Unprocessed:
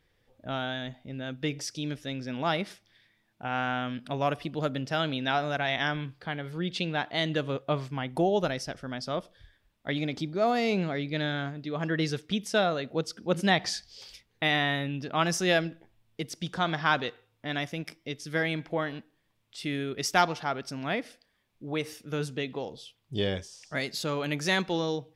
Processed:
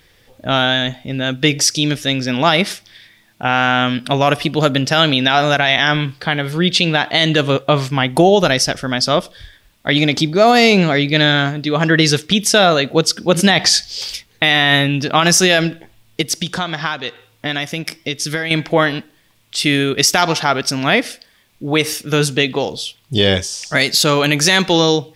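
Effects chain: 16.21–18.51 s: compression 12:1, threshold -35 dBFS, peak gain reduction 17 dB; treble shelf 2.2 kHz +8.5 dB; loudness maximiser +16.5 dB; trim -1 dB

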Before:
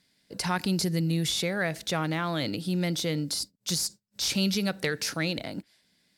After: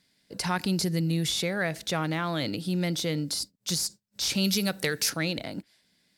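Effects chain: 4.44–5.10 s: treble shelf 6.9 kHz +11.5 dB

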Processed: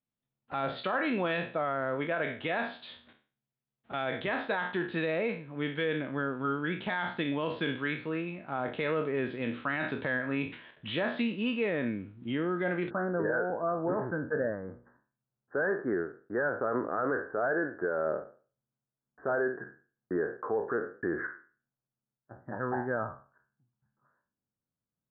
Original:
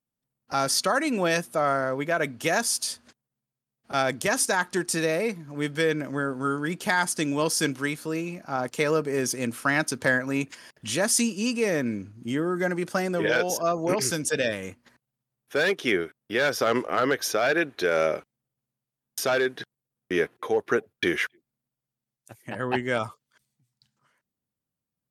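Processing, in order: spectral sustain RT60 0.39 s; steep low-pass 3.8 kHz 96 dB/octave, from 12.89 s 1.7 kHz; peak limiter -16.5 dBFS, peak gain reduction 8 dB; trim -4.5 dB

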